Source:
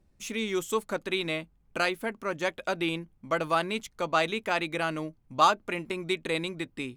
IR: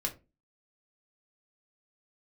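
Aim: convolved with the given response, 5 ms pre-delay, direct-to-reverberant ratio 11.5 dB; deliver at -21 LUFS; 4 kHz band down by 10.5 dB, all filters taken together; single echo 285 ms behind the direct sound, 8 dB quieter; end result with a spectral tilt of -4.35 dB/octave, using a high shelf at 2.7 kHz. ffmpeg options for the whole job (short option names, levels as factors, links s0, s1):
-filter_complex "[0:a]highshelf=f=2700:g=-8,equalizer=f=4000:t=o:g=-7,aecho=1:1:285:0.398,asplit=2[s0][s1];[1:a]atrim=start_sample=2205,adelay=5[s2];[s1][s2]afir=irnorm=-1:irlink=0,volume=0.188[s3];[s0][s3]amix=inputs=2:normalize=0,volume=2.99"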